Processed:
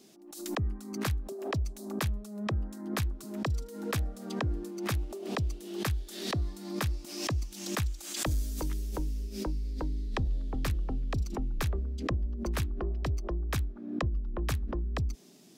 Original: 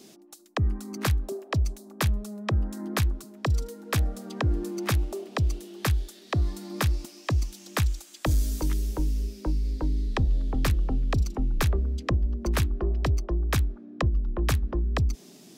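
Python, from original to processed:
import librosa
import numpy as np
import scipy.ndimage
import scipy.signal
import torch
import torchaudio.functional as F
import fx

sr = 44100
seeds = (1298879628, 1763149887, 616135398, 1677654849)

y = fx.pre_swell(x, sr, db_per_s=64.0)
y = F.gain(torch.from_numpy(y), -7.0).numpy()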